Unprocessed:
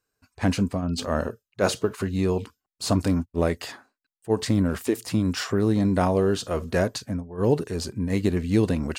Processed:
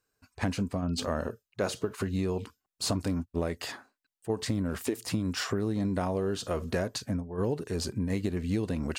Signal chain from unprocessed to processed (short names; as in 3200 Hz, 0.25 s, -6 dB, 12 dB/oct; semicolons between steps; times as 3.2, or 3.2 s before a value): compressor 5:1, threshold -27 dBFS, peak gain reduction 11 dB